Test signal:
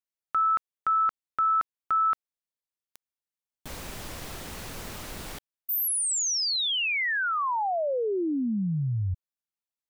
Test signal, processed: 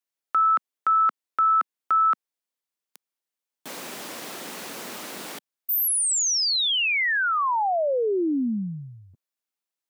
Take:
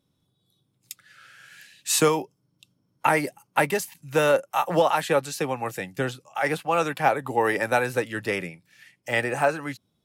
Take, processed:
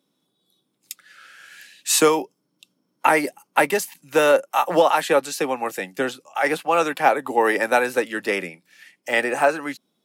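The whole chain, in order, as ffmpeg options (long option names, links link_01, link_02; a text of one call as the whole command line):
ffmpeg -i in.wav -af "highpass=frequency=210:width=0.5412,highpass=frequency=210:width=1.3066,volume=4dB" out.wav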